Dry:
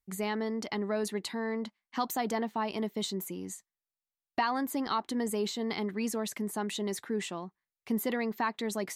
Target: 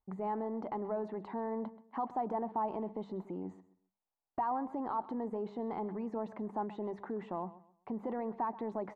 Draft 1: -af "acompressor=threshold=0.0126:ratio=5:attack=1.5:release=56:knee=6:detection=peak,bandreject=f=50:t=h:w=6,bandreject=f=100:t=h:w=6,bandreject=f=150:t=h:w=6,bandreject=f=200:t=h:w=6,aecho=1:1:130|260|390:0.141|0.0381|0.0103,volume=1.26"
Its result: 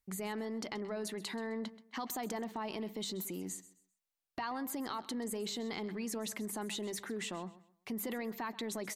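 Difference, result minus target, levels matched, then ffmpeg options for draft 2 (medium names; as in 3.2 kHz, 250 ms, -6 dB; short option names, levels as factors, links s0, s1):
1 kHz band -5.5 dB
-af "acompressor=threshold=0.0126:ratio=5:attack=1.5:release=56:knee=6:detection=peak,lowpass=f=880:t=q:w=2.7,bandreject=f=50:t=h:w=6,bandreject=f=100:t=h:w=6,bandreject=f=150:t=h:w=6,bandreject=f=200:t=h:w=6,aecho=1:1:130|260|390:0.141|0.0381|0.0103,volume=1.26"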